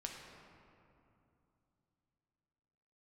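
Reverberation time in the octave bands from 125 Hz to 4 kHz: 3.9 s, 3.6 s, 2.9 s, 2.8 s, 2.1 s, 1.4 s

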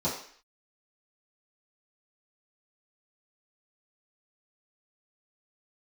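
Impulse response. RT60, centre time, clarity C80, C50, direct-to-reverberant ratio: 0.55 s, 35 ms, 9.5 dB, 5.5 dB, -11.0 dB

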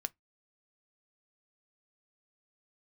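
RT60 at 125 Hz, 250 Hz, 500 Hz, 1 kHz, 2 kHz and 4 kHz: 0.20 s, 0.20 s, 0.15 s, 0.15 s, 0.15 s, 0.10 s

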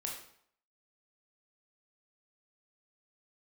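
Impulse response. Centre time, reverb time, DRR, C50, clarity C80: 35 ms, 0.65 s, -1.0 dB, 4.5 dB, 8.0 dB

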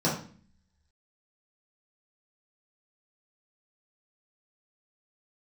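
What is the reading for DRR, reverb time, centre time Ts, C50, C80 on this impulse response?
-7.0 dB, 0.45 s, 33 ms, 5.5 dB, 10.0 dB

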